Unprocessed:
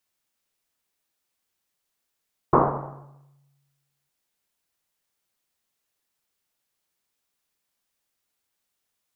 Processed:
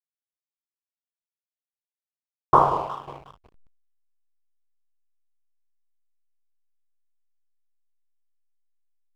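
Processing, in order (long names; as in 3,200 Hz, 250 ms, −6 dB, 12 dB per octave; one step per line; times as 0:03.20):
graphic EQ with 10 bands 250 Hz −10 dB, 1,000 Hz +7 dB, 2,000 Hz −3 dB
on a send: delay that swaps between a low-pass and a high-pass 181 ms, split 1,000 Hz, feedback 55%, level −9.5 dB
on the sum: slack as between gear wheels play −34.5 dBFS
downward expander −54 dBFS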